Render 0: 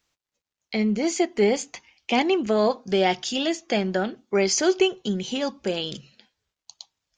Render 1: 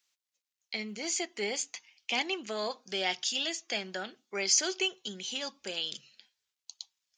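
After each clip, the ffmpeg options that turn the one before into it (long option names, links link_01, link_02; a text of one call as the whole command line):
ffmpeg -i in.wav -af "highpass=frequency=230:poles=1,tiltshelf=frequency=1400:gain=-8,volume=-8dB" out.wav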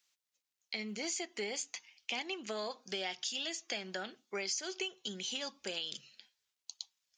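ffmpeg -i in.wav -af "acompressor=threshold=-35dB:ratio=6" out.wav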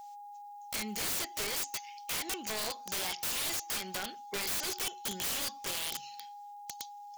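ffmpeg -i in.wav -af "crystalizer=i=3:c=0,aeval=exprs='val(0)+0.00447*sin(2*PI*820*n/s)':channel_layout=same,aeval=exprs='(mod(33.5*val(0)+1,2)-1)/33.5':channel_layout=same,volume=2dB" out.wav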